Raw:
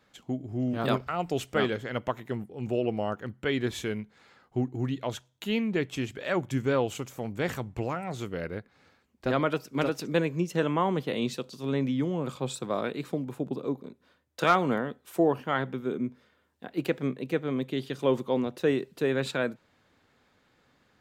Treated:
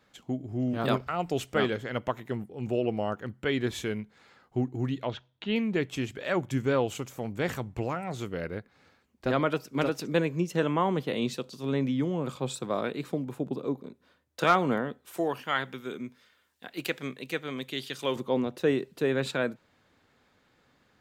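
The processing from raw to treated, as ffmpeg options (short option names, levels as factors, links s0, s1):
-filter_complex "[0:a]asettb=1/sr,asplit=3[s0][s1][s2];[s0]atrim=end=5.054[s3];[s1]atrim=start=5.05:end=5.56,asetpts=PTS-STARTPTS,afade=t=in:d=0.004:c=qsin,afade=t=out:st=0.506:d=0.004:c=qsin,lowpass=f=4100:w=0.5412,lowpass=f=4100:w=1.3066[s4];[s2]atrim=start=5.556[s5];[s3][s4]acrossfade=d=0.004:c1=hsin:c2=qsin[s6];[s6][s5]acrossfade=d=0.004:c1=qsin:c2=hsin,asettb=1/sr,asplit=3[s7][s8][s9];[s7]atrim=end=15.174[s10];[s8]atrim=start=15.17:end=18.16,asetpts=PTS-STARTPTS,afade=t=in:d=0.004:c=qsin,afade=t=out:st=2.986:d=0.004:c=qsin,tiltshelf=f=1200:g=-8[s11];[s9]atrim=start=18.156[s12];[s10][s11]acrossfade=d=0.004:c1=hsin:c2=qsin[s13];[s13][s12]acrossfade=d=0.004:c1=qsin:c2=hsin"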